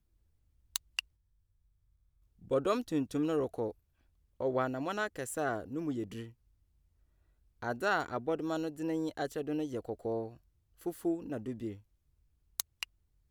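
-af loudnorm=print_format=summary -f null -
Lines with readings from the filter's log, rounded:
Input Integrated:    -36.4 LUFS
Input True Peak:     -13.0 dBTP
Input LRA:             5.6 LU
Input Threshold:     -46.7 LUFS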